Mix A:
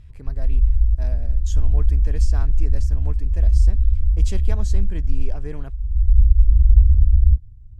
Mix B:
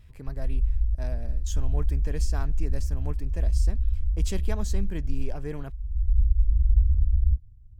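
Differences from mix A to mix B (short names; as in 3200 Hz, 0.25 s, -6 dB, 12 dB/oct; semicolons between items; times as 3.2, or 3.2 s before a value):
background -8.0 dB; master: remove LPF 10000 Hz 12 dB/oct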